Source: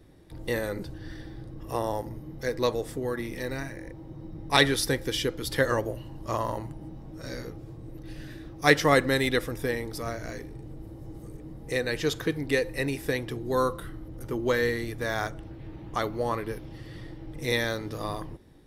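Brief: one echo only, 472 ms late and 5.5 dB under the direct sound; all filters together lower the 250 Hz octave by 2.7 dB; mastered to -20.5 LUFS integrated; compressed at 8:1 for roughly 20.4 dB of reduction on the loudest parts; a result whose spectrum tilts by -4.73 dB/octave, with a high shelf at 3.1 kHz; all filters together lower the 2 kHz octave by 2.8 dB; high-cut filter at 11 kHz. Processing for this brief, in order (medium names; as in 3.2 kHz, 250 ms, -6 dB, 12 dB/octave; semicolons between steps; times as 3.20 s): low-pass 11 kHz; peaking EQ 250 Hz -3.5 dB; peaking EQ 2 kHz -4.5 dB; treble shelf 3.1 kHz +4 dB; compression 8:1, threshold -37 dBFS; delay 472 ms -5.5 dB; trim +20.5 dB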